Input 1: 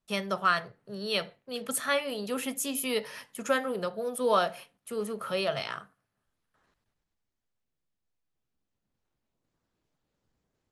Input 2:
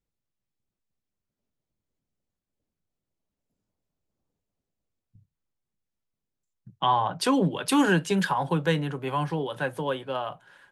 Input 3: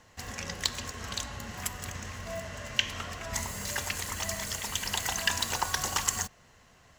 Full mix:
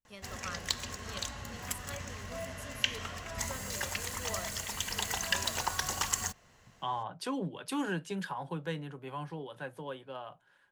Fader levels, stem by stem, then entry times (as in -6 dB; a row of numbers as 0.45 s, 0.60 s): -18.5 dB, -12.5 dB, -3.0 dB; 0.00 s, 0.00 s, 0.05 s